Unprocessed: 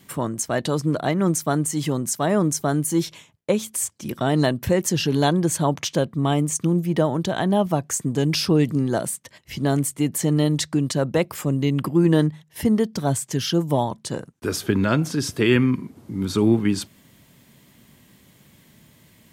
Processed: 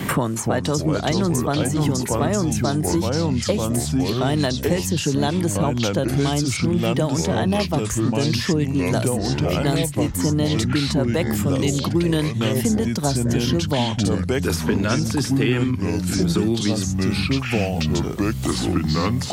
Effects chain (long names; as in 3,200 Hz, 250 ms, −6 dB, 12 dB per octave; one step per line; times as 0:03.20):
delay with pitch and tempo change per echo 250 ms, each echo −4 semitones, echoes 3
multiband upward and downward compressor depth 100%
level −2 dB